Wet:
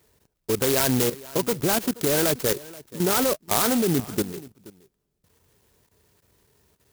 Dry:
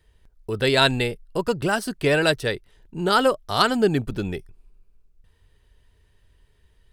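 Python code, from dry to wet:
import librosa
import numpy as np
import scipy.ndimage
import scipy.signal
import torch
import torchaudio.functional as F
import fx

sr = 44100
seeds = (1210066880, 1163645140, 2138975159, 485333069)

p1 = scipy.signal.sosfilt(scipy.signal.butter(2, 150.0, 'highpass', fs=sr, output='sos'), x)
p2 = fx.level_steps(p1, sr, step_db=14)
p3 = p2 + fx.echo_single(p2, sr, ms=478, db=-20.0, dry=0)
p4 = fx.clock_jitter(p3, sr, seeds[0], jitter_ms=0.14)
y = F.gain(torch.from_numpy(p4), 7.0).numpy()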